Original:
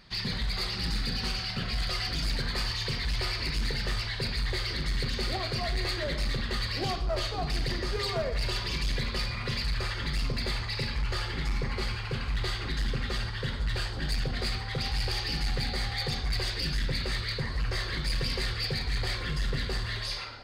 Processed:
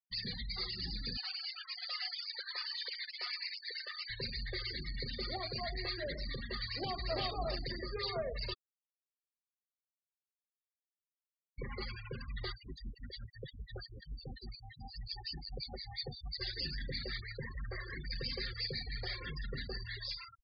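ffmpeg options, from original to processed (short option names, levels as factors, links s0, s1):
-filter_complex "[0:a]asettb=1/sr,asplit=3[s0][s1][s2];[s0]atrim=end=1.174[s3];[s1]atrim=start=1.17:end=4.1,asetpts=PTS-STARTPTS,afade=t=in:d=0.004:c=qsin,afade=t=out:st=2.926:d=0.004:c=qsin,highpass=680[s4];[s2]atrim=start=4.096[s5];[s3][s4]acrossfade=d=0.004:c1=hsin:c2=qsin[s6];[s6][s5]acrossfade=d=0.004:c1=qsin:c2=hsin,asplit=2[s7][s8];[s8]afade=t=in:st=6.63:d=0.01,afade=t=out:st=7.2:d=0.01,aecho=0:1:350|700:0.841395|0.0841395[s9];[s7][s9]amix=inputs=2:normalize=0,asettb=1/sr,asplit=3[s10][s11][s12];[s10]atrim=end=12.524[s13];[s11]atrim=start=12.52:end=16.41,asetpts=PTS-STARTPTS,afade=t=in:d=0.004:c=qsin,afade=t=out:st=3.886:d=0.004:c=qsin,acrossover=split=1800[s14][s15];[s14]aeval=exprs='val(0)*(1-1/2+1/2*cos(2*PI*5.6*n/s))':c=same[s16];[s15]aeval=exprs='val(0)*(1-1/2-1/2*cos(2*PI*5.6*n/s))':c=same[s17];[s16][s17]amix=inputs=2:normalize=0[s18];[s12]atrim=start=16.406[s19];[s13][s18]acrossfade=d=0.004:c1=hsin:c2=qsin[s20];[s20][s19]acrossfade=d=0.004:c1=qsin:c2=hsin,asettb=1/sr,asplit=3[s21][s22][s23];[s21]atrim=end=17.204[s24];[s22]atrim=start=17.2:end=18.11,asetpts=PTS-STARTPTS,afade=t=in:d=0.004:c=qsin,afade=t=out:st=0.906:d=0.004:c=qsin,acrossover=split=2800[s25][s26];[s26]acompressor=threshold=0.00708:ratio=4:attack=1:release=60[s27];[s25][s27]amix=inputs=2:normalize=0[s28];[s23]atrim=start=18.106[s29];[s24][s28]acrossfade=d=0.004:c1=hsin:c2=qsin[s30];[s30][s29]acrossfade=d=0.004:c1=qsin:c2=hsin,asplit=3[s31][s32][s33];[s31]atrim=end=8.54,asetpts=PTS-STARTPTS,afade=t=out:st=8.536:d=0.004:c=hsin[s34];[s32]atrim=start=8.54:end=11.58,asetpts=PTS-STARTPTS,volume=0[s35];[s33]atrim=start=11.58,asetpts=PTS-STARTPTS,afade=t=in:d=0.004:c=hsin[s36];[s34][s35][s36]concat=n=3:v=0:a=1,afftfilt=real='re*gte(hypot(re,im),0.0316)':imag='im*gte(hypot(re,im),0.0316)':win_size=1024:overlap=0.75,bass=f=250:g=-6,treble=f=4000:g=2,volume=0.501"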